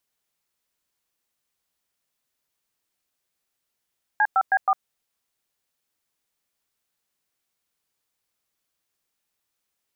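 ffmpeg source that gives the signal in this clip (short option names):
-f lavfi -i "aevalsrc='0.119*clip(min(mod(t,0.159),0.054-mod(t,0.159))/0.002,0,1)*(eq(floor(t/0.159),0)*(sin(2*PI*852*mod(t,0.159))+sin(2*PI*1633*mod(t,0.159)))+eq(floor(t/0.159),1)*(sin(2*PI*770*mod(t,0.159))+sin(2*PI*1336*mod(t,0.159)))+eq(floor(t/0.159),2)*(sin(2*PI*770*mod(t,0.159))+sin(2*PI*1633*mod(t,0.159)))+eq(floor(t/0.159),3)*(sin(2*PI*770*mod(t,0.159))+sin(2*PI*1209*mod(t,0.159))))':d=0.636:s=44100"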